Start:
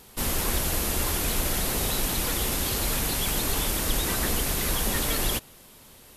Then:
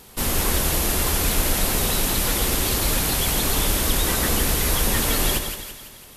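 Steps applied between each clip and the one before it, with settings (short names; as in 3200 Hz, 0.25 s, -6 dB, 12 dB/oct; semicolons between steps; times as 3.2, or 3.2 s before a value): split-band echo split 1300 Hz, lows 0.115 s, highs 0.167 s, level -7 dB; gain +4 dB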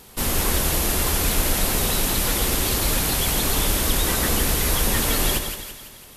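nothing audible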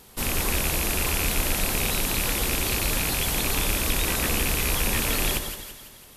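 rattling part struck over -25 dBFS, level -12 dBFS; gain -4 dB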